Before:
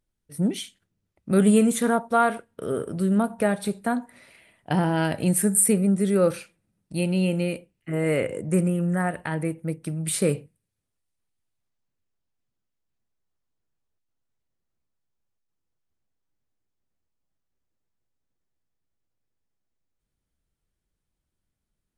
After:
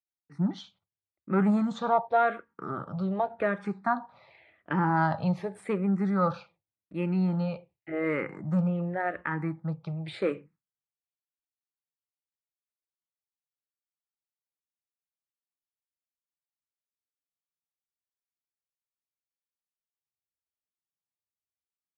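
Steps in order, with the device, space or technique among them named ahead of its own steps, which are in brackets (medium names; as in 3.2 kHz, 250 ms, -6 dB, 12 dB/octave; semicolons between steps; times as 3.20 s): gate with hold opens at -50 dBFS; dynamic bell 7 kHz, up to +5 dB, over -50 dBFS, Q 3.8; barber-pole phaser into a guitar amplifier (barber-pole phaser -0.88 Hz; saturation -13 dBFS, distortion -22 dB; cabinet simulation 94–3800 Hz, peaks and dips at 240 Hz -8 dB, 440 Hz -5 dB, 840 Hz +8 dB, 1.2 kHz +8 dB, 2.9 kHz -9 dB)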